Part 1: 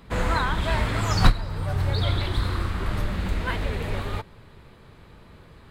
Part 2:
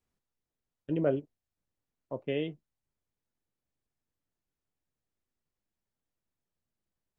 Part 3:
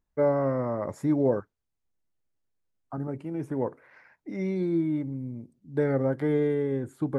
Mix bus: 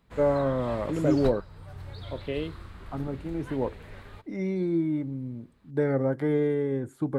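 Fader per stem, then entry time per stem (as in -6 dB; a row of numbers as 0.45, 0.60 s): -17.0, +0.5, 0.0 dB; 0.00, 0.00, 0.00 s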